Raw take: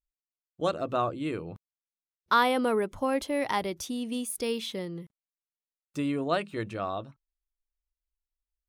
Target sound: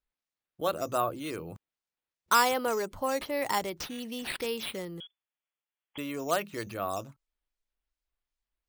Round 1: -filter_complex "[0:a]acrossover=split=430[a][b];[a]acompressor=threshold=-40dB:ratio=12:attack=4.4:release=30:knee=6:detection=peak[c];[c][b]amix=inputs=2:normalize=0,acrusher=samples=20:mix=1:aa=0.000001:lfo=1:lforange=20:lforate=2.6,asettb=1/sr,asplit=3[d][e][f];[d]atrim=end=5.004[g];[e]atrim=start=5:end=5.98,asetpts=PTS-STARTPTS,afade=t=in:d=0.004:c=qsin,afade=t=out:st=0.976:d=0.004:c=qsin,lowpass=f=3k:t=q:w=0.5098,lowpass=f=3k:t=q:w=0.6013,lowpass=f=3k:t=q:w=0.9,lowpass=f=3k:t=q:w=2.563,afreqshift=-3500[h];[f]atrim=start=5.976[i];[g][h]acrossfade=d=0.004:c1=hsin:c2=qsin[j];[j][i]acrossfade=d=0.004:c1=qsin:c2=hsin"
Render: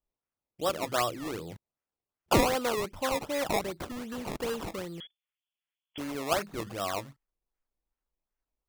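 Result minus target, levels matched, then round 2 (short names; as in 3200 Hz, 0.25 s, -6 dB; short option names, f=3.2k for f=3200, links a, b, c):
decimation with a swept rate: distortion +14 dB
-filter_complex "[0:a]acrossover=split=430[a][b];[a]acompressor=threshold=-40dB:ratio=12:attack=4.4:release=30:knee=6:detection=peak[c];[c][b]amix=inputs=2:normalize=0,acrusher=samples=5:mix=1:aa=0.000001:lfo=1:lforange=5:lforate=2.6,asettb=1/sr,asplit=3[d][e][f];[d]atrim=end=5.004[g];[e]atrim=start=5:end=5.98,asetpts=PTS-STARTPTS,afade=t=in:d=0.004:c=qsin,afade=t=out:st=0.976:d=0.004:c=qsin,lowpass=f=3k:t=q:w=0.5098,lowpass=f=3k:t=q:w=0.6013,lowpass=f=3k:t=q:w=0.9,lowpass=f=3k:t=q:w=2.563,afreqshift=-3500[h];[f]atrim=start=5.976[i];[g][h]acrossfade=d=0.004:c1=hsin:c2=qsin[j];[j][i]acrossfade=d=0.004:c1=qsin:c2=hsin"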